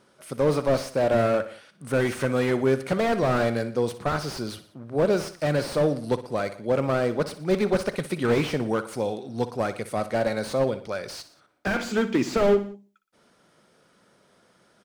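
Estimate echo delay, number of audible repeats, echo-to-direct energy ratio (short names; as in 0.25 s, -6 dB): 60 ms, 3, -12.5 dB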